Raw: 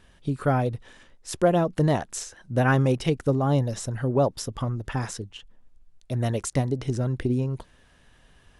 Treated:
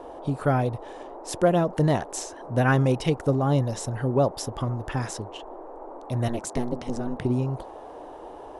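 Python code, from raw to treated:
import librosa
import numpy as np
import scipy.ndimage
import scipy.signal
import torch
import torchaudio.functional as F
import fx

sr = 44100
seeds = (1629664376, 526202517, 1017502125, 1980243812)

y = fx.ring_mod(x, sr, carrier_hz=120.0, at=(6.28, 7.24))
y = fx.dmg_noise_band(y, sr, seeds[0], low_hz=290.0, high_hz=940.0, level_db=-41.0)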